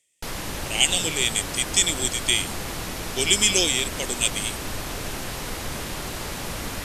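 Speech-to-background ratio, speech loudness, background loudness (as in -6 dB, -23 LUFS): 9.5 dB, -21.5 LUFS, -31.0 LUFS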